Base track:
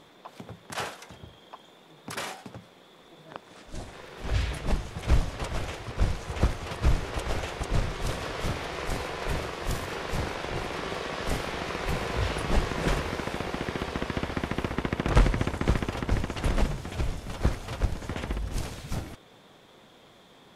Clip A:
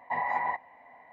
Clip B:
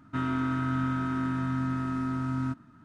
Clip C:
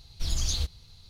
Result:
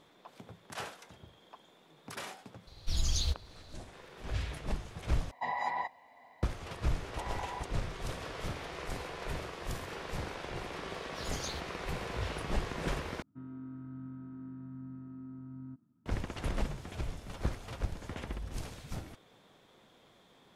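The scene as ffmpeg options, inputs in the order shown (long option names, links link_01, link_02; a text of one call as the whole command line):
ffmpeg -i bed.wav -i cue0.wav -i cue1.wav -i cue2.wav -filter_complex "[3:a]asplit=2[link_01][link_02];[1:a]asplit=2[link_03][link_04];[0:a]volume=-8dB[link_05];[link_01]highshelf=frequency=6300:gain=-4.5[link_06];[link_03]highshelf=frequency=2900:width_type=q:width=1.5:gain=13.5[link_07];[link_04]lowpass=1400[link_08];[link_02]highpass=100[link_09];[2:a]bandpass=frequency=200:width_type=q:width=0.93:csg=0[link_10];[link_05]asplit=3[link_11][link_12][link_13];[link_11]atrim=end=5.314[link_14];[link_07]atrim=end=1.12,asetpts=PTS-STARTPTS,volume=-3.5dB[link_15];[link_12]atrim=start=6.426:end=13.224[link_16];[link_10]atrim=end=2.84,asetpts=PTS-STARTPTS,volume=-14dB[link_17];[link_13]atrim=start=16.056[link_18];[link_06]atrim=end=1.09,asetpts=PTS-STARTPTS,volume=-2dB,afade=type=in:duration=0.004:curve=hsin,afade=type=out:start_time=1.086:duration=0.004:curve=hsin,adelay=2670[link_19];[link_08]atrim=end=1.12,asetpts=PTS-STARTPTS,volume=-11dB,afade=type=in:duration=0.004:curve=hsin,afade=type=out:start_time=1.116:duration=0.004:curve=hsin,adelay=7080[link_20];[link_09]atrim=end=1.09,asetpts=PTS-STARTPTS,volume=-10.5dB,afade=type=in:duration=0.004:curve=hsin,afade=type=out:start_time=1.086:duration=0.004:curve=hsin,adelay=10950[link_21];[link_14][link_15]acrossfade=duration=0.004:curve1=hsin:curve2=hsin[link_22];[link_22][link_16]acrossfade=duration=0.004:curve1=hsin:curve2=hsin[link_23];[link_23][link_17]acrossfade=duration=0.004:curve1=hsin:curve2=hsin[link_24];[link_24][link_18]acrossfade=duration=0.004:curve1=hsin:curve2=hsin[link_25];[link_25][link_19][link_20][link_21]amix=inputs=4:normalize=0" out.wav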